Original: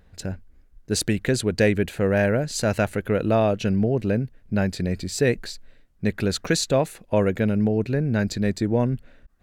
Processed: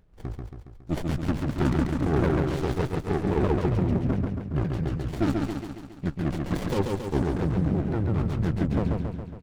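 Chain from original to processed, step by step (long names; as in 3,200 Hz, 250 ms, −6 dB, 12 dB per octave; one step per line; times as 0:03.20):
pitch shifter swept by a sawtooth −11.5 semitones, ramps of 172 ms
on a send: repeating echo 138 ms, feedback 58%, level −3.5 dB
on the sum: windowed peak hold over 33 samples
level −3 dB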